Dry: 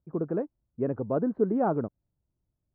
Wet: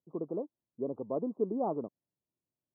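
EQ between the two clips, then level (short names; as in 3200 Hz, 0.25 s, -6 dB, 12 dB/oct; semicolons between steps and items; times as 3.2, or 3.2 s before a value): HPF 210 Hz 12 dB/oct; elliptic low-pass 1100 Hz, stop band 40 dB; -5.5 dB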